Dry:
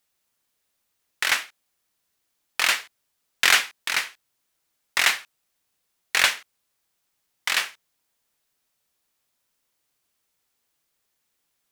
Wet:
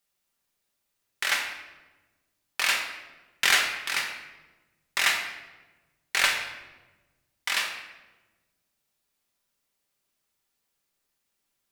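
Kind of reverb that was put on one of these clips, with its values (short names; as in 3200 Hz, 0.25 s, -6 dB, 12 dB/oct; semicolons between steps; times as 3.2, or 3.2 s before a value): shoebox room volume 690 m³, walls mixed, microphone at 1.2 m; gain -5 dB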